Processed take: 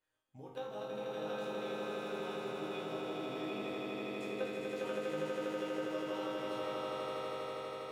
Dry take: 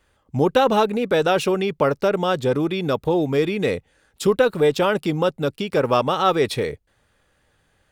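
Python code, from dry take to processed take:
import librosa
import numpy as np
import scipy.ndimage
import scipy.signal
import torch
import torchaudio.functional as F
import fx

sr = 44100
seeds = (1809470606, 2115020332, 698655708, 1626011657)

y = fx.level_steps(x, sr, step_db=13)
y = fx.low_shelf(y, sr, hz=150.0, db=-12.0)
y = fx.resonator_bank(y, sr, root=44, chord='major', decay_s=0.63)
y = fx.echo_swell(y, sr, ms=81, loudest=8, wet_db=-3.5)
y = y * 10.0 ** (-2.0 / 20.0)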